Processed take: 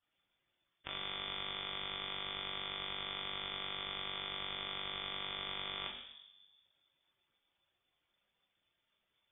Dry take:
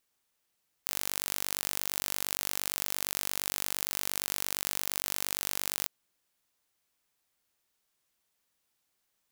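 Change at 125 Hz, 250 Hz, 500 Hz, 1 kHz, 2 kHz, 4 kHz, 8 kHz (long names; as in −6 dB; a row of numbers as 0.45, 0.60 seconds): −3.5 dB, −5.0 dB, −3.5 dB, −2.0 dB, −4.0 dB, 0.0 dB, below −40 dB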